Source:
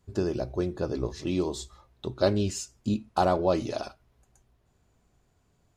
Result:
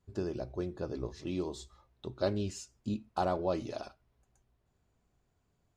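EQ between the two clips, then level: high shelf 8200 Hz -6.5 dB; -7.5 dB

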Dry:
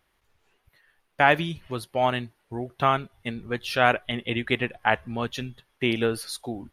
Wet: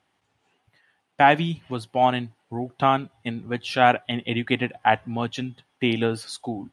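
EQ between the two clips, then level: speaker cabinet 110–9400 Hz, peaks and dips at 110 Hz +7 dB, 170 Hz +6 dB, 270 Hz +8 dB, 780 Hz +8 dB, 3000 Hz +3 dB, 8100 Hz +4 dB; -1.0 dB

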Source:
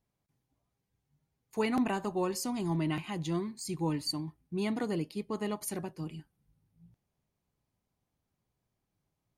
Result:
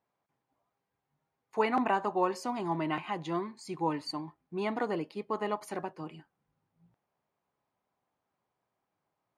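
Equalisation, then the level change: band-pass 970 Hz, Q 0.94; +8.0 dB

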